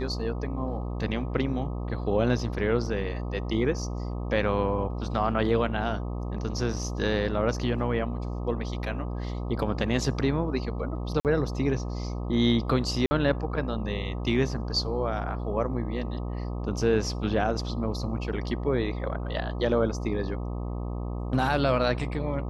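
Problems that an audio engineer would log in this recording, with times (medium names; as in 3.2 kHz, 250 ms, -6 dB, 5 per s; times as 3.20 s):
buzz 60 Hz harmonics 21 -32 dBFS
11.20–11.25 s: dropout 48 ms
13.06–13.11 s: dropout 50 ms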